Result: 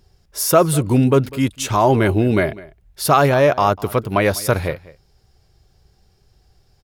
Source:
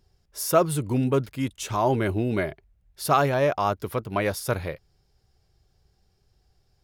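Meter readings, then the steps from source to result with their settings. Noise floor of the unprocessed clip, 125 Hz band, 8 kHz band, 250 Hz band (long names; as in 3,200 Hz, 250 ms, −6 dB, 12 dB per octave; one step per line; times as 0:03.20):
−68 dBFS, +9.0 dB, +9.0 dB, +9.0 dB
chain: in parallel at +2 dB: brickwall limiter −15 dBFS, peak gain reduction 8 dB
on the sum: slap from a distant wall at 34 metres, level −20 dB
level +2 dB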